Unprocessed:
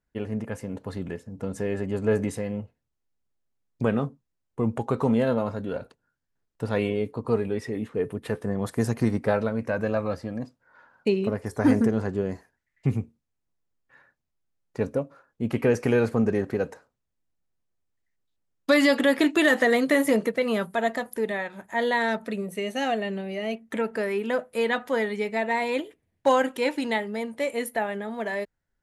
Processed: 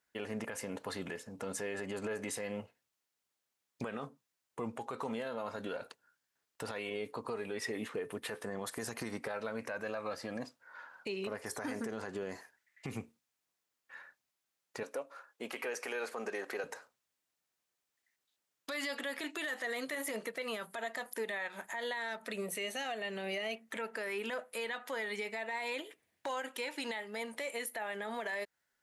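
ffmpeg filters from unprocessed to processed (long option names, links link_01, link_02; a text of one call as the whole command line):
ffmpeg -i in.wav -filter_complex "[0:a]asettb=1/sr,asplit=3[link_01][link_02][link_03];[link_01]atrim=end=14.834[link_04];[link_02]atrim=start=14.83:end=16.64,asetpts=PTS-STARTPTS,afade=type=in:duration=0.004:curve=qsin,afade=type=out:start_time=1.806:duration=0.004:curve=qsin,highpass=410[link_05];[link_03]atrim=start=16.636[link_06];[link_04][link_05]acrossfade=duration=0.004:curve1=hsin:curve2=qsin[link_07];[link_07][link_06]acrossfade=duration=0.004:curve1=qsin:curve2=hsin,highpass=frequency=1300:poles=1,acompressor=threshold=-40dB:ratio=6,alimiter=level_in=12.5dB:limit=-24dB:level=0:latency=1:release=38,volume=-12.5dB,volume=7.5dB" out.wav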